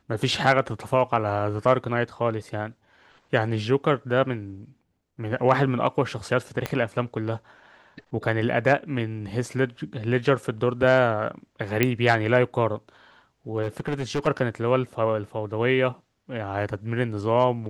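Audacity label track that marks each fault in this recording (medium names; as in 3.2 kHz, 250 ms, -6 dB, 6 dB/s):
6.660000	6.660000	pop -12 dBFS
11.830000	11.830000	pop -6 dBFS
13.620000	14.280000	clipped -21.5 dBFS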